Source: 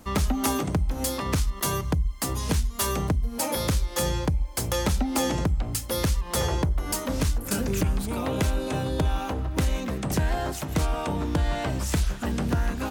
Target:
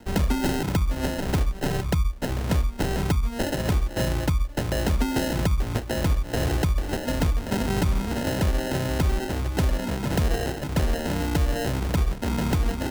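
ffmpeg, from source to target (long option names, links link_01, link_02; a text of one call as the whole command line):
ffmpeg -i in.wav -filter_complex "[0:a]acrusher=samples=38:mix=1:aa=0.000001,acrossover=split=240|3000[link_01][link_02][link_03];[link_02]acompressor=threshold=-26dB:ratio=6[link_04];[link_01][link_04][link_03]amix=inputs=3:normalize=0,volume=2dB" out.wav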